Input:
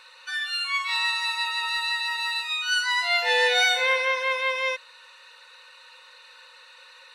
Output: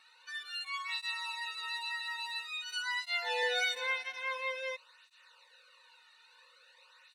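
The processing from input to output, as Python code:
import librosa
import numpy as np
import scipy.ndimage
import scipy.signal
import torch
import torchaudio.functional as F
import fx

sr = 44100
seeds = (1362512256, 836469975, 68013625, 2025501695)

y = fx.highpass(x, sr, hz=240.0, slope=12, at=(0.88, 3.43))
y = fx.flanger_cancel(y, sr, hz=0.49, depth_ms=2.0)
y = y * 10.0 ** (-9.0 / 20.0)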